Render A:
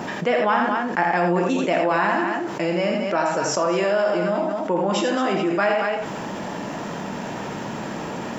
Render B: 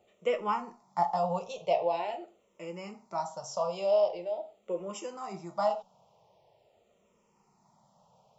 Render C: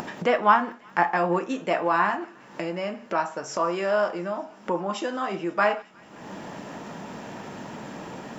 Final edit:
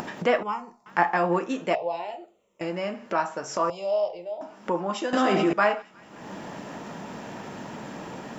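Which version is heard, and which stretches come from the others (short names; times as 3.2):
C
0.43–0.86 from B
1.75–2.61 from B
3.7–4.41 from B
5.13–5.53 from A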